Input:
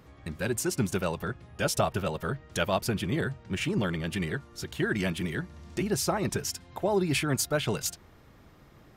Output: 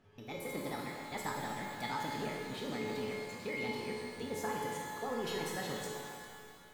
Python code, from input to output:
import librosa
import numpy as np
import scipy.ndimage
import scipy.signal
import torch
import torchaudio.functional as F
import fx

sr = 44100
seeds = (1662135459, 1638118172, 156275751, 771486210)

y = fx.speed_glide(x, sr, from_pct=145, to_pct=121)
y = fx.high_shelf(y, sr, hz=6900.0, db=-10.5)
y = fx.comb_fb(y, sr, f0_hz=430.0, decay_s=0.64, harmonics='all', damping=0.0, mix_pct=90)
y = fx.rev_shimmer(y, sr, seeds[0], rt60_s=2.2, semitones=12, shimmer_db=-8, drr_db=-0.5)
y = y * librosa.db_to_amplitude(4.5)